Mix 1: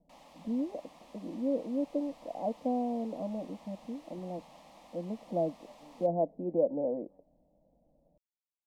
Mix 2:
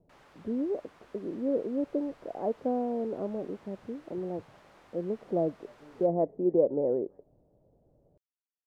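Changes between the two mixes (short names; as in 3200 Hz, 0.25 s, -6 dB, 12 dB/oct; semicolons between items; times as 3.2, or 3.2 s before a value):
background -6.0 dB; master: remove fixed phaser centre 400 Hz, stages 6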